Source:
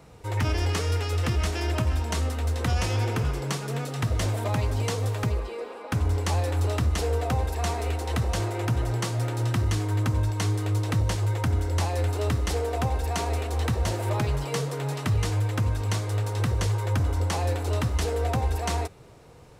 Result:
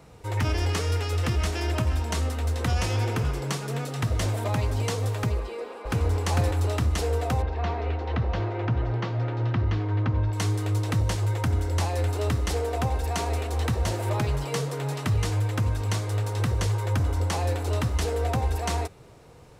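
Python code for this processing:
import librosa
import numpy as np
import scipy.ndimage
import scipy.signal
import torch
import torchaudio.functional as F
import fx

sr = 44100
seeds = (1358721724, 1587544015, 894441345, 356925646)

y = fx.echo_throw(x, sr, start_s=5.4, length_s=0.66, ms=450, feedback_pct=15, wet_db=-1.0)
y = fx.gaussian_blur(y, sr, sigma=2.4, at=(7.42, 10.33))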